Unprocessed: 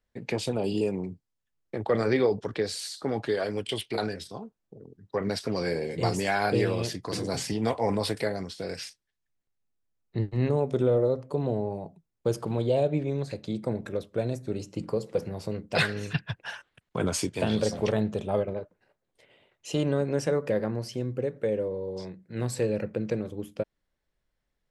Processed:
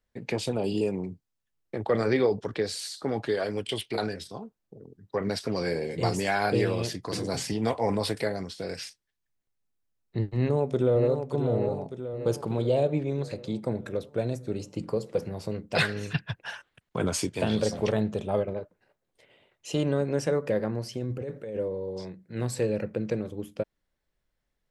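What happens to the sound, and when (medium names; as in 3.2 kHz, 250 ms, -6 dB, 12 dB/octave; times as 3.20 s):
10.36–11.28 s: echo throw 590 ms, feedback 55%, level -7 dB
20.97–21.57 s: compressor with a negative ratio -33 dBFS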